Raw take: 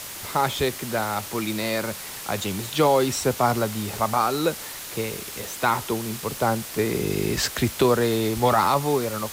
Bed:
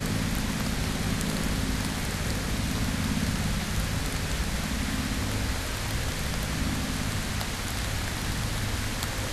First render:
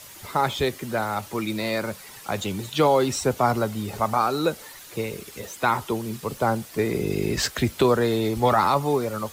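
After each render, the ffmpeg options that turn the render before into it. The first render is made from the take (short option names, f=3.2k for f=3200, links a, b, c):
-af "afftdn=nr=10:nf=-36"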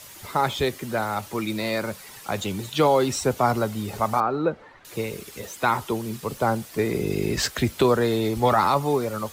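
-filter_complex "[0:a]asettb=1/sr,asplit=3[a][b][c];[a]atrim=end=4.204[d];[b]atrim=start=4.2:end=4.85,asetpts=PTS-STARTPTS,afade=t=in:d=0.004:c=qsin,afade=t=out:st=0.646:d=0.004:c=qsin,lowpass=1.6k[e];[c]atrim=start=4.846[f];[d][e]acrossfade=d=0.004:c1=hsin:c2=qsin[g];[g][f]acrossfade=d=0.004:c1=qsin:c2=hsin"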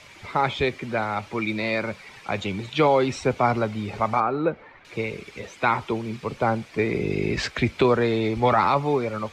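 -af "lowpass=4k,equalizer=f=2.3k:t=o:w=0.25:g=9.5"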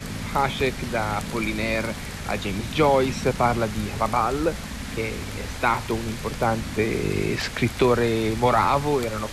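-filter_complex "[1:a]volume=-4dB[a];[0:a][a]amix=inputs=2:normalize=0"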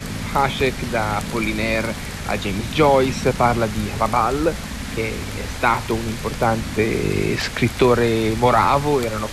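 -af "volume=4dB"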